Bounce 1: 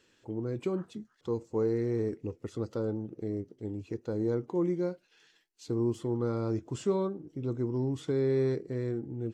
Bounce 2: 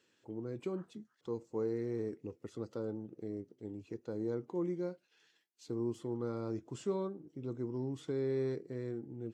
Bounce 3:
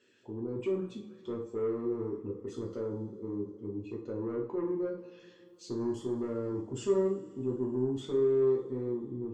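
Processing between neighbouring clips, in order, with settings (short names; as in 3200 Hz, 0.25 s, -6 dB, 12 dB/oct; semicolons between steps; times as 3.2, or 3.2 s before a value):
HPF 120 Hz; gain -6.5 dB
formant sharpening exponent 1.5; soft clip -32.5 dBFS, distortion -16 dB; reverb, pre-delay 3 ms, DRR -3 dB; gain +2 dB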